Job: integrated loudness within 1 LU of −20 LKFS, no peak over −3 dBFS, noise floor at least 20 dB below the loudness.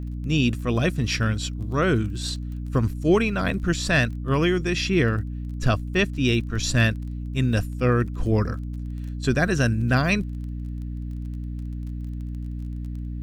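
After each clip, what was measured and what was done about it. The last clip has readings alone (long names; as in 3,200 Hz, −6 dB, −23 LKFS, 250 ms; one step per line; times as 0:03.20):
crackle rate 20 per second; mains hum 60 Hz; hum harmonics up to 300 Hz; level of the hum −28 dBFS; integrated loudness −24.5 LKFS; sample peak −7.5 dBFS; target loudness −20.0 LKFS
→ click removal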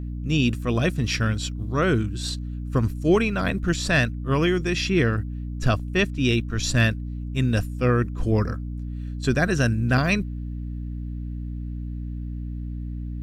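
crackle rate 0 per second; mains hum 60 Hz; hum harmonics up to 300 Hz; level of the hum −28 dBFS
→ hum removal 60 Hz, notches 5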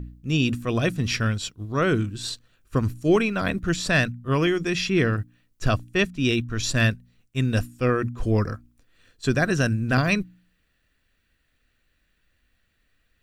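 mains hum none found; integrated loudness −24.0 LKFS; sample peak −7.5 dBFS; target loudness −20.0 LKFS
→ level +4 dB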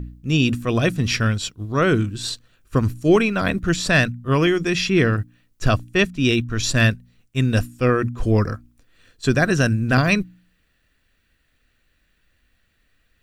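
integrated loudness −20.0 LKFS; sample peak −4.0 dBFS; background noise floor −66 dBFS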